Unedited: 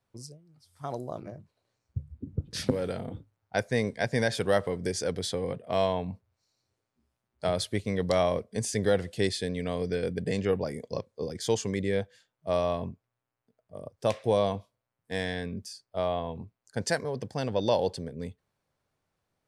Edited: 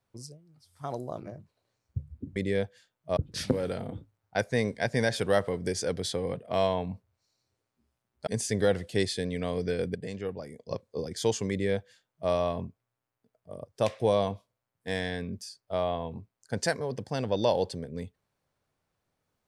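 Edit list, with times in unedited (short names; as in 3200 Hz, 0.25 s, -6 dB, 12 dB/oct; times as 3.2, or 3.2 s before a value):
7.46–8.51 cut
10.19–10.95 gain -8 dB
11.74–12.55 copy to 2.36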